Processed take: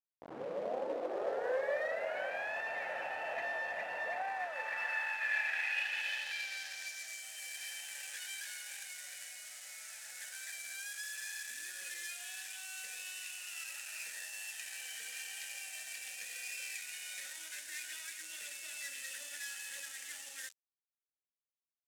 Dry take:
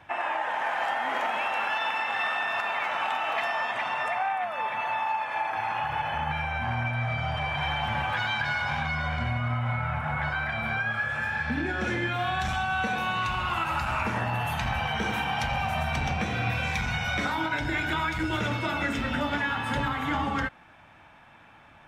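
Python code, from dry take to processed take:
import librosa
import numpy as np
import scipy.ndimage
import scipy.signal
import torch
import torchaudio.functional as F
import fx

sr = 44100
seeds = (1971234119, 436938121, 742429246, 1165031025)

y = fx.tape_start_head(x, sr, length_s=2.62)
y = fx.vowel_filter(y, sr, vowel='e')
y = fx.peak_eq(y, sr, hz=530.0, db=-9.5, octaves=1.2)
y = fx.hum_notches(y, sr, base_hz=60, count=10)
y = fx.quant_companded(y, sr, bits=4)
y = fx.tube_stage(y, sr, drive_db=38.0, bias=0.4)
y = fx.filter_sweep_bandpass(y, sr, from_hz=690.0, to_hz=8000.0, start_s=4.09, end_s=7.28, q=1.5)
y = y * 10.0 ** (15.5 / 20.0)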